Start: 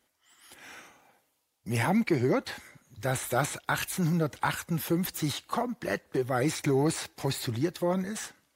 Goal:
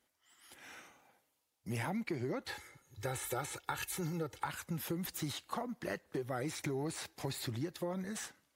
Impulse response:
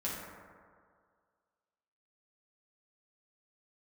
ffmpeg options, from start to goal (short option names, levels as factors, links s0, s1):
-filter_complex "[0:a]asettb=1/sr,asplit=3[s0][s1][s2];[s0]atrim=end=2.484[s3];[s1]atrim=start=2.48:end=4.46,asetpts=PTS-STARTPTS,afade=t=in:d=0.004:c=qsin,afade=t=out:st=1.976:d=0.004:c=qsin,aecho=1:1:2.3:0.71,atrim=end_sample=87318[s4];[s2]atrim=start=4.456[s5];[s3][s4]acrossfade=d=0.004:c1=hsin:c2=qsin[s6];[s6][s5]acrossfade=d=0.004:c1=qsin:c2=hsin,acompressor=threshold=0.0355:ratio=6,volume=0.531"